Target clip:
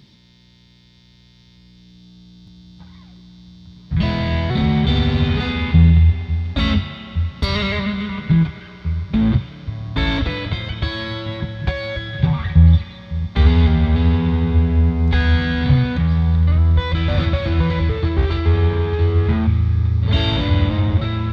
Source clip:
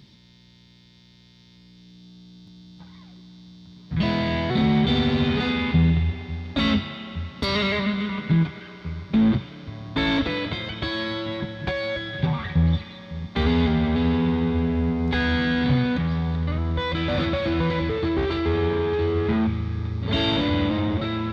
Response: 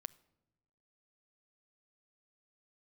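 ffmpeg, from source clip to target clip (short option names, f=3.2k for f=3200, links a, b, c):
-af "asubboost=boost=4.5:cutoff=120,volume=2dB"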